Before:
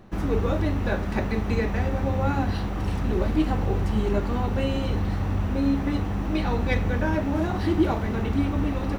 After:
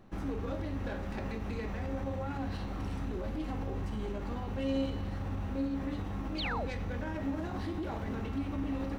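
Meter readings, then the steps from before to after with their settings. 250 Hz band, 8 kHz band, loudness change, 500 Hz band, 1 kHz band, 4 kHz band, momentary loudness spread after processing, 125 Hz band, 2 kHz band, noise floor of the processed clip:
−10.5 dB, can't be measured, −11.0 dB, −11.0 dB, −10.5 dB, −6.5 dB, 4 LU, −12.0 dB, −10.5 dB, −38 dBFS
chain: phase distortion by the signal itself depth 0.14 ms
brickwall limiter −20.5 dBFS, peak gain reduction 10.5 dB
tuned comb filter 270 Hz, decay 0.93 s, mix 80%
sound drawn into the spectrogram fall, 0:06.38–0:06.66, 420–4,900 Hz −42 dBFS
level +5 dB

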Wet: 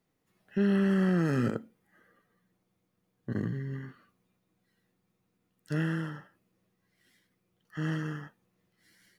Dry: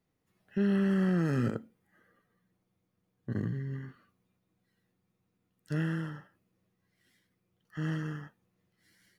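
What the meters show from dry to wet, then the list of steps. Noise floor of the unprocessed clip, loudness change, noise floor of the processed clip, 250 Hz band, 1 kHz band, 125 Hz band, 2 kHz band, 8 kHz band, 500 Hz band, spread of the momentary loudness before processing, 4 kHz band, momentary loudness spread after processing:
−80 dBFS, +1.5 dB, −78 dBFS, +1.5 dB, +3.0 dB, +0.5 dB, +3.0 dB, can't be measured, +2.5 dB, 17 LU, +3.0 dB, 17 LU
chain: parametric band 63 Hz −6.5 dB 2 octaves
level +3 dB

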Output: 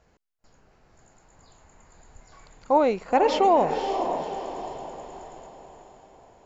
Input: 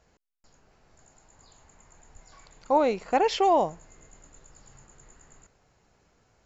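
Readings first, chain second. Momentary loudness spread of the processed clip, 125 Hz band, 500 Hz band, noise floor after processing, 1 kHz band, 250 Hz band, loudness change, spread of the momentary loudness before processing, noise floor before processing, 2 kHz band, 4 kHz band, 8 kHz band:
20 LU, +3.5 dB, +3.5 dB, −64 dBFS, +3.0 dB, +3.5 dB, +0.5 dB, 4 LU, −67 dBFS, +2.0 dB, +0.5 dB, can't be measured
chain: high-shelf EQ 3,600 Hz −6.5 dB
on a send: feedback delay with all-pass diffusion 527 ms, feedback 46%, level −7 dB
on the sum: level +2.5 dB

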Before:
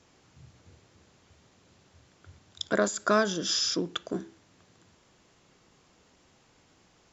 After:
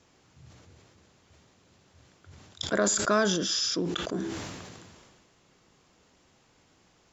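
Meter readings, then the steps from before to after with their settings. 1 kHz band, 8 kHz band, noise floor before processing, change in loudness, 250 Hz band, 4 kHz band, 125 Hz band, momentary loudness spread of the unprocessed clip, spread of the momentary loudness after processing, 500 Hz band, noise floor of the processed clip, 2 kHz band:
−0.5 dB, can't be measured, −64 dBFS, +0.5 dB, +2.0 dB, +0.5 dB, +4.0 dB, 12 LU, 16 LU, 0.0 dB, −64 dBFS, +0.5 dB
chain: level that may fall only so fast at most 30 dB per second
level −1 dB

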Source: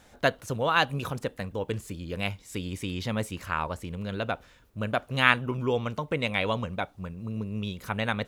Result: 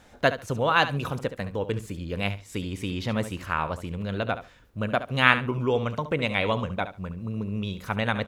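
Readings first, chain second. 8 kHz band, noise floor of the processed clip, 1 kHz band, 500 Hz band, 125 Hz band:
−1.5 dB, −54 dBFS, +2.5 dB, +2.5 dB, +2.5 dB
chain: high-shelf EQ 5,500 Hz −6 dB
repeating echo 70 ms, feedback 17%, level −12.5 dB
level +2.5 dB

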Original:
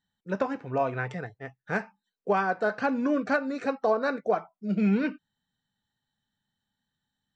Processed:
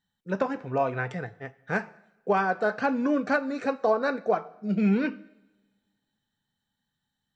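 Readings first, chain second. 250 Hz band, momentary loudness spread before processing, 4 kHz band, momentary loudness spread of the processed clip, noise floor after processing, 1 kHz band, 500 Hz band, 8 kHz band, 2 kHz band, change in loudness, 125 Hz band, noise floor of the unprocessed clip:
+1.0 dB, 11 LU, +1.0 dB, 12 LU, −83 dBFS, +1.0 dB, +1.0 dB, can't be measured, +1.0 dB, +1.0 dB, +1.0 dB, −85 dBFS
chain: coupled-rooms reverb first 0.85 s, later 2.2 s, from −22 dB, DRR 16.5 dB
level +1 dB

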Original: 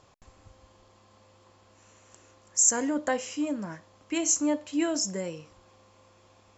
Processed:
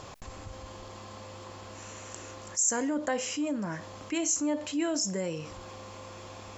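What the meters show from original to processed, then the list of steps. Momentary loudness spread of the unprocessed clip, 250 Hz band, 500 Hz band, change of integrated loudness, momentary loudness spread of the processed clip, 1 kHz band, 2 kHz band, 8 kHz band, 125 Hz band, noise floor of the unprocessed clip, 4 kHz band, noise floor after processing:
14 LU, −1.5 dB, −1.0 dB, −3.5 dB, 18 LU, −0.5 dB, −0.5 dB, can't be measured, +4.5 dB, −60 dBFS, 0.0 dB, −46 dBFS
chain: envelope flattener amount 50%
level −6 dB

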